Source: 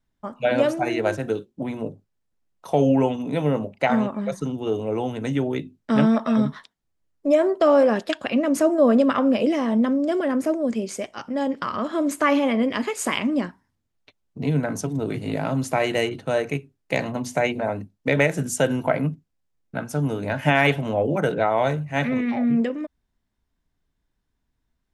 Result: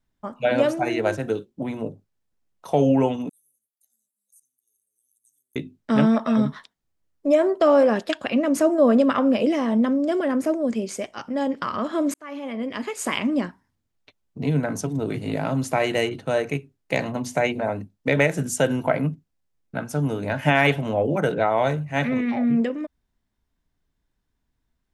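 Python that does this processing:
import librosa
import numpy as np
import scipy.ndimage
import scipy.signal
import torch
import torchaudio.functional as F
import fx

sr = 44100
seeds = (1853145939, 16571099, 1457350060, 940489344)

y = fx.cheby2_highpass(x, sr, hz=2600.0, order=4, stop_db=70, at=(3.29, 5.56))
y = fx.edit(y, sr, fx.fade_in_span(start_s=12.14, length_s=1.12), tone=tone)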